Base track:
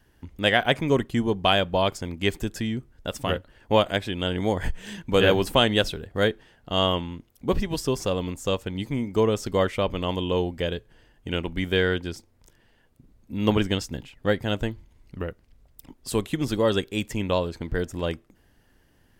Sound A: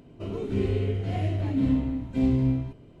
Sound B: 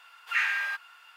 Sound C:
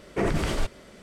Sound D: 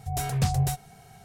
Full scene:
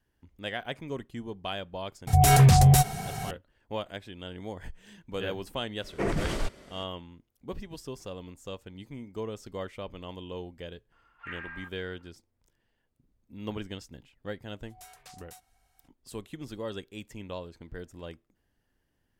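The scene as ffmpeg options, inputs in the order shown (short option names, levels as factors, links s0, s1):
-filter_complex "[4:a]asplit=2[s0][s1];[0:a]volume=0.188[s2];[s0]alimiter=level_in=17.8:limit=0.891:release=50:level=0:latency=1[s3];[2:a]asuperpass=centerf=720:order=4:qfactor=0.57[s4];[s1]highpass=820[s5];[s3]atrim=end=1.24,asetpts=PTS-STARTPTS,volume=0.335,afade=t=in:d=0.004:c=hsin,afade=t=out:st=1.236:d=0.004:c=hsin,adelay=2070[s6];[3:a]atrim=end=1.02,asetpts=PTS-STARTPTS,volume=0.668,afade=t=in:d=0.004:c=hsin,afade=t=out:st=1.016:d=0.004:c=hsin,adelay=5820[s7];[s4]atrim=end=1.16,asetpts=PTS-STARTPTS,volume=0.335,afade=t=in:d=0.004:c=hsin,afade=t=out:st=1.156:d=0.004:c=hsin,adelay=10920[s8];[s5]atrim=end=1.24,asetpts=PTS-STARTPTS,volume=0.15,afade=t=in:d=0.004:c=hsin,afade=t=out:st=1.236:d=0.004:c=hsin,adelay=14640[s9];[s2][s6][s7][s8][s9]amix=inputs=5:normalize=0"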